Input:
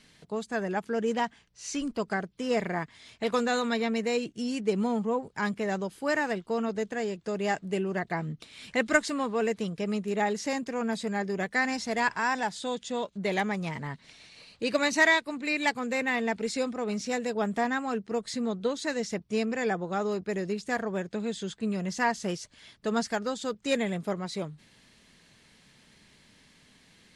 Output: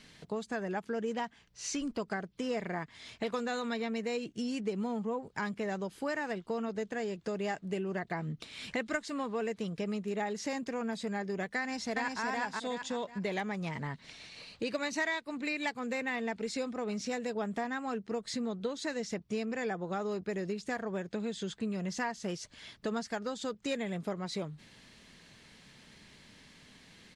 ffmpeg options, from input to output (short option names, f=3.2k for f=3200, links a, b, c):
-filter_complex "[0:a]asplit=2[a][b];[b]afade=t=in:st=11.59:d=0.01,afade=t=out:st=12.22:d=0.01,aecho=0:1:370|740|1110|1480:0.944061|0.236015|0.0590038|0.014751[c];[a][c]amix=inputs=2:normalize=0,equalizer=f=10k:w=1.3:g=-4.5,acompressor=threshold=-37dB:ratio=3,volume=2.5dB"